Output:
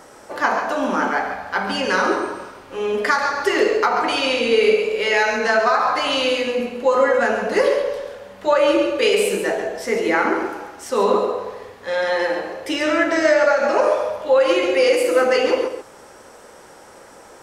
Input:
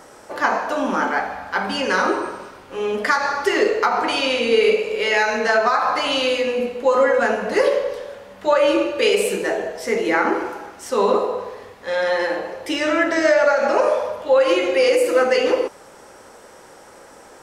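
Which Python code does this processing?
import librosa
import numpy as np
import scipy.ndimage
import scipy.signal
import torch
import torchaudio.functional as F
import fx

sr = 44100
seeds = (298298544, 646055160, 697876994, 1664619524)

y = x + 10.0 ** (-9.0 / 20.0) * np.pad(x, (int(137 * sr / 1000.0), 0))[:len(x)]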